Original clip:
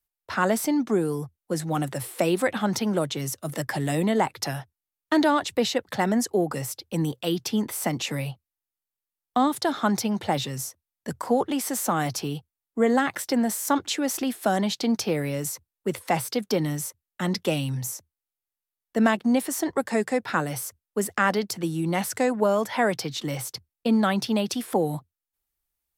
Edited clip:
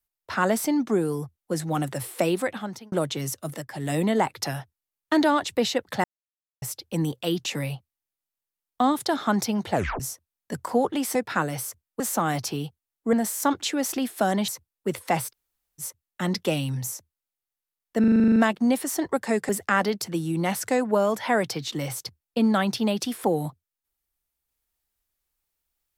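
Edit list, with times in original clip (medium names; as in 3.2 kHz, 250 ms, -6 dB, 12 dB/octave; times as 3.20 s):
2.24–2.92 s: fade out
3.43–3.95 s: dip -12 dB, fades 0.26 s
6.04–6.62 s: mute
7.45–8.01 s: delete
10.29 s: tape stop 0.27 s
12.84–13.38 s: delete
14.73–15.48 s: delete
16.30–16.81 s: room tone, crossfade 0.06 s
19.00 s: stutter 0.04 s, 10 plays
20.13–20.98 s: move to 11.71 s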